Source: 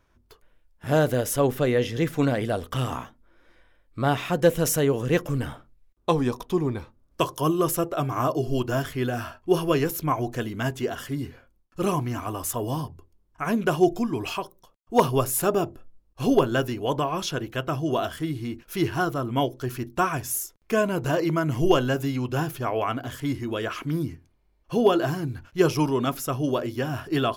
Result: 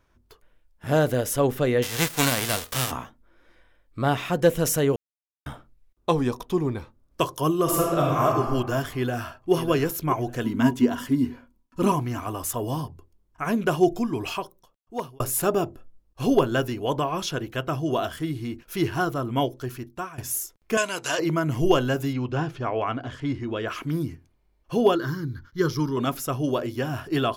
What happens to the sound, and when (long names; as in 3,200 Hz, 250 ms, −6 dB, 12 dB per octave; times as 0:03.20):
0:01.82–0:02.90: spectral envelope flattened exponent 0.3
0:04.96–0:05.46: silence
0:07.63–0:08.25: thrown reverb, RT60 1.5 s, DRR −3 dB
0:08.91–0:09.53: delay throw 600 ms, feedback 25%, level −11 dB
0:10.44–0:11.92: hollow resonant body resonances 250/970 Hz, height 17 dB, ringing for 100 ms
0:14.39–0:15.20: fade out linear
0:19.48–0:20.18: fade out, to −18 dB
0:20.77–0:21.19: meter weighting curve ITU-R 468
0:22.13–0:23.68: high-frequency loss of the air 120 metres
0:24.95–0:25.97: phaser with its sweep stopped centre 2,600 Hz, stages 6